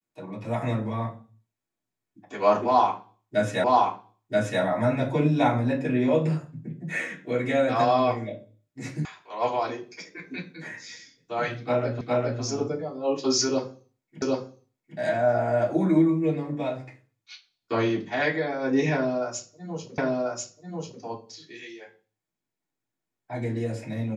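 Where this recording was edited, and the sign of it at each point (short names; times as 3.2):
3.64 repeat of the last 0.98 s
9.05 sound cut off
12.01 repeat of the last 0.41 s
14.22 repeat of the last 0.76 s
19.98 repeat of the last 1.04 s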